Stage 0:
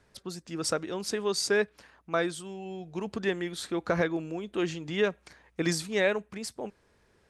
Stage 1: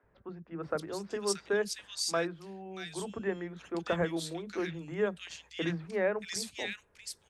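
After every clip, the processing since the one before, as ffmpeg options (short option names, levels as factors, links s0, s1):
-filter_complex "[0:a]acrossover=split=260|2000[s0][s1][s2];[s0]adelay=30[s3];[s2]adelay=630[s4];[s3][s1][s4]amix=inputs=3:normalize=0,volume=0.75"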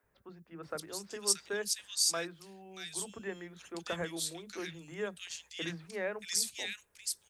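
-af "crystalizer=i=5:c=0,volume=0.398"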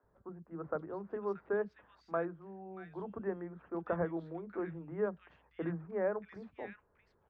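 -af "lowpass=f=1300:w=0.5412,lowpass=f=1300:w=1.3066,volume=1.58"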